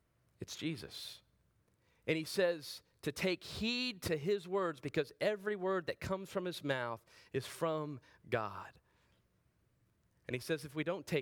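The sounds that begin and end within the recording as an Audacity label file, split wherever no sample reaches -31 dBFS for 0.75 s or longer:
2.080000	8.470000	sound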